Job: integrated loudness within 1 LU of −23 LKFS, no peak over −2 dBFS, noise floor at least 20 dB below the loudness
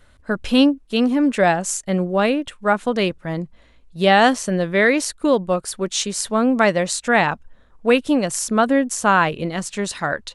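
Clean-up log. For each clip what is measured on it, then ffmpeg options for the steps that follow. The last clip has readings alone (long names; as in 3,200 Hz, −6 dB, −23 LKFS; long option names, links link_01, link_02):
integrated loudness −19.0 LKFS; sample peak −2.5 dBFS; target loudness −23.0 LKFS
→ -af "volume=-4dB"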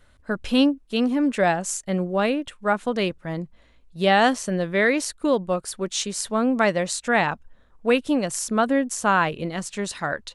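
integrated loudness −23.0 LKFS; sample peak −6.5 dBFS; background noise floor −56 dBFS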